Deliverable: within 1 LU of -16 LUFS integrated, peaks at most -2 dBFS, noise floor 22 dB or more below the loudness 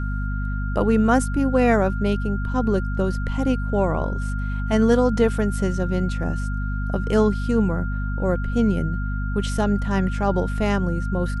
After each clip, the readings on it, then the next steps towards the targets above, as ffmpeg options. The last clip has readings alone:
hum 50 Hz; highest harmonic 250 Hz; hum level -23 dBFS; steady tone 1.4 kHz; tone level -34 dBFS; loudness -22.5 LUFS; peak level -4.0 dBFS; loudness target -16.0 LUFS
-> -af "bandreject=f=50:t=h:w=6,bandreject=f=100:t=h:w=6,bandreject=f=150:t=h:w=6,bandreject=f=200:t=h:w=6,bandreject=f=250:t=h:w=6"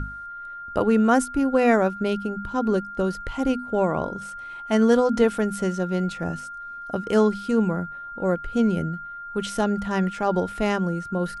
hum not found; steady tone 1.4 kHz; tone level -34 dBFS
-> -af "bandreject=f=1400:w=30"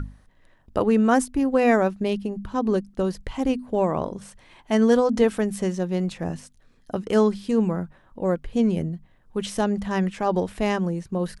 steady tone not found; loudness -24.0 LUFS; peak level -5.5 dBFS; loudness target -16.0 LUFS
-> -af "volume=2.51,alimiter=limit=0.794:level=0:latency=1"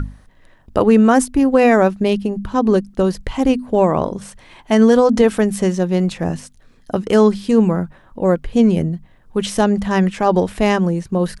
loudness -16.5 LUFS; peak level -2.0 dBFS; noise floor -50 dBFS

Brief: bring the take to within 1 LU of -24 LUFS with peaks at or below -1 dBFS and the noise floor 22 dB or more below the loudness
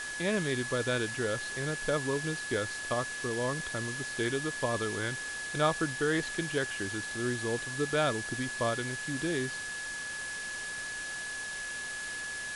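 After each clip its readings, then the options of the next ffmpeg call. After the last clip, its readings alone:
steady tone 1.7 kHz; tone level -37 dBFS; noise floor -39 dBFS; noise floor target -55 dBFS; loudness -32.5 LUFS; peak level -15.0 dBFS; loudness target -24.0 LUFS
-> -af "bandreject=f=1700:w=30"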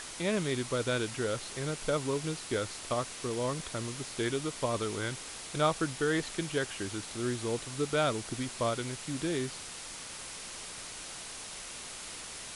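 steady tone not found; noise floor -44 dBFS; noise floor target -56 dBFS
-> -af "afftdn=nr=12:nf=-44"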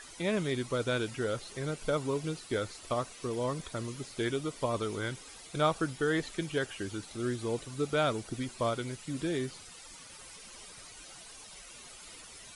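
noise floor -50 dBFS; noise floor target -56 dBFS
-> -af "afftdn=nr=6:nf=-50"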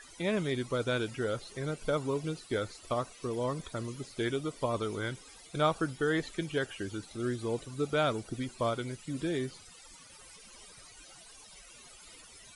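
noise floor -54 dBFS; noise floor target -56 dBFS
-> -af "afftdn=nr=6:nf=-54"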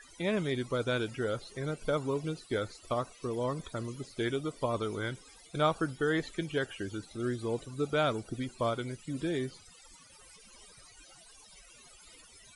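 noise floor -57 dBFS; loudness -34.0 LUFS; peak level -15.0 dBFS; loudness target -24.0 LUFS
-> -af "volume=3.16"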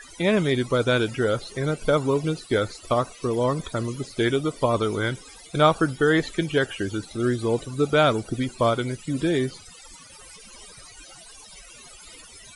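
loudness -24.0 LUFS; peak level -5.0 dBFS; noise floor -47 dBFS

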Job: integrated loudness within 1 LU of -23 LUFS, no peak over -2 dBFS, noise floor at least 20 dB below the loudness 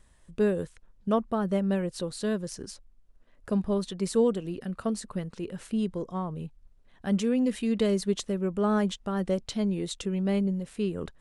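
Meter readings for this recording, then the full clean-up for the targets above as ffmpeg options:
loudness -29.5 LUFS; peak level -14.0 dBFS; loudness target -23.0 LUFS
-> -af "volume=2.11"

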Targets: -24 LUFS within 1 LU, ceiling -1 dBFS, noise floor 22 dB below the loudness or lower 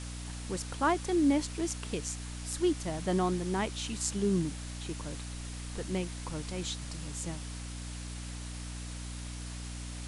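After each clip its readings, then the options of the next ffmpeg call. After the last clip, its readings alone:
hum 60 Hz; highest harmonic 300 Hz; hum level -39 dBFS; noise floor -41 dBFS; noise floor target -57 dBFS; loudness -34.5 LUFS; peak level -14.0 dBFS; loudness target -24.0 LUFS
-> -af "bandreject=f=60:t=h:w=4,bandreject=f=120:t=h:w=4,bandreject=f=180:t=h:w=4,bandreject=f=240:t=h:w=4,bandreject=f=300:t=h:w=4"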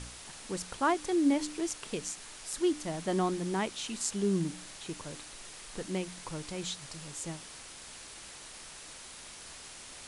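hum not found; noise floor -48 dBFS; noise floor target -56 dBFS
-> -af "afftdn=nr=8:nf=-48"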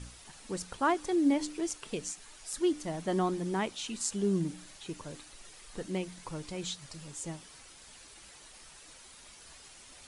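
noise floor -54 dBFS; noise floor target -56 dBFS
-> -af "afftdn=nr=6:nf=-54"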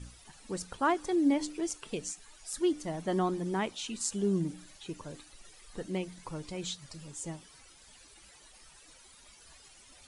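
noise floor -57 dBFS; loudness -34.0 LUFS; peak level -15.0 dBFS; loudness target -24.0 LUFS
-> -af "volume=3.16"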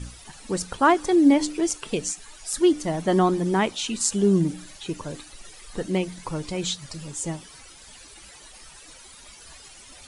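loudness -24.0 LUFS; peak level -5.0 dBFS; noise floor -47 dBFS

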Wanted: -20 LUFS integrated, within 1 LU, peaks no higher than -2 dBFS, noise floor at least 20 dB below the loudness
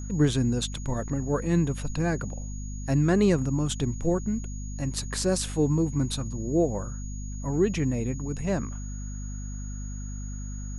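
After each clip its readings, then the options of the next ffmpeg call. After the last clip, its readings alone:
hum 50 Hz; highest harmonic 250 Hz; hum level -32 dBFS; steady tone 6.7 kHz; tone level -45 dBFS; loudness -28.0 LUFS; peak level -11.0 dBFS; loudness target -20.0 LUFS
-> -af "bandreject=f=50:t=h:w=6,bandreject=f=100:t=h:w=6,bandreject=f=150:t=h:w=6,bandreject=f=200:t=h:w=6,bandreject=f=250:t=h:w=6"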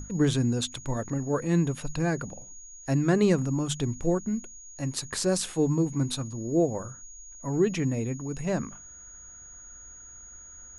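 hum not found; steady tone 6.7 kHz; tone level -45 dBFS
-> -af "bandreject=f=6700:w=30"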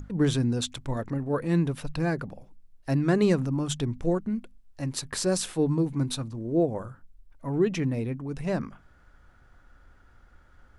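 steady tone not found; loudness -28.0 LUFS; peak level -11.0 dBFS; loudness target -20.0 LUFS
-> -af "volume=2.51"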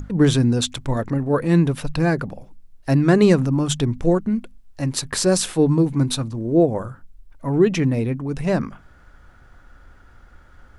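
loudness -20.0 LUFS; peak level -3.0 dBFS; noise floor -49 dBFS

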